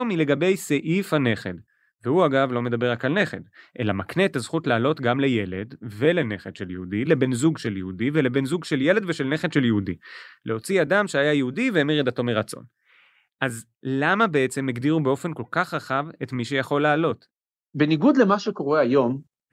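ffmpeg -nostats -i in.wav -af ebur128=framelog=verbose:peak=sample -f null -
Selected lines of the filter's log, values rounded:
Integrated loudness:
  I:         -22.9 LUFS
  Threshold: -33.4 LUFS
Loudness range:
  LRA:         1.9 LU
  Threshold: -43.7 LUFS
  LRA low:   -24.6 LUFS
  LRA high:  -22.8 LUFS
Sample peak:
  Peak:       -5.7 dBFS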